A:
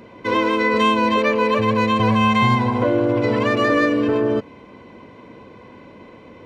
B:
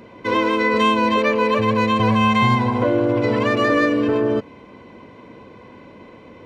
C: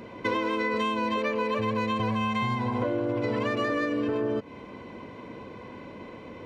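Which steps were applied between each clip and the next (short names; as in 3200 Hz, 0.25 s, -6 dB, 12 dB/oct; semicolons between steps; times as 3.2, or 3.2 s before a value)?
nothing audible
compressor 12:1, threshold -24 dBFS, peak gain reduction 12.5 dB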